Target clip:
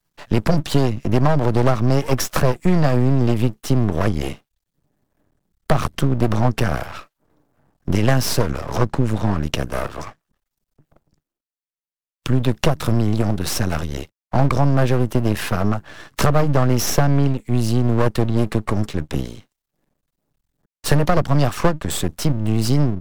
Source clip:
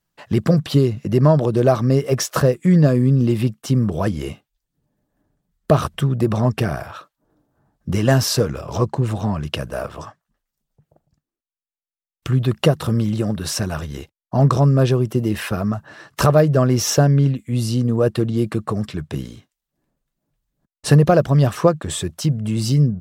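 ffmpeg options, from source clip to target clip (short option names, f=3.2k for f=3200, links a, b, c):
-filter_complex "[0:a]aeval=exprs='max(val(0),0)':c=same,acrossover=split=320|650[a][b][c];[a]acompressor=threshold=-18dB:ratio=4[d];[b]acompressor=threshold=-33dB:ratio=4[e];[c]acompressor=threshold=-26dB:ratio=4[f];[d][e][f]amix=inputs=3:normalize=0,volume=6dB"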